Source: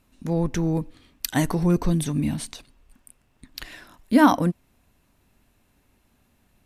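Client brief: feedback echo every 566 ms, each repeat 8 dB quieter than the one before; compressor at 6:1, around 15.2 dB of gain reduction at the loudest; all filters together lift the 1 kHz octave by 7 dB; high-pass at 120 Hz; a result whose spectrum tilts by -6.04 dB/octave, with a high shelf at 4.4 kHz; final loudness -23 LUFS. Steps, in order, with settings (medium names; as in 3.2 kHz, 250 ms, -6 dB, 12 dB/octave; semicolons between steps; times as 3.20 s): high-pass 120 Hz; peaking EQ 1 kHz +8.5 dB; treble shelf 4.4 kHz -7 dB; compression 6:1, threshold -25 dBFS; feedback delay 566 ms, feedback 40%, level -8 dB; trim +9 dB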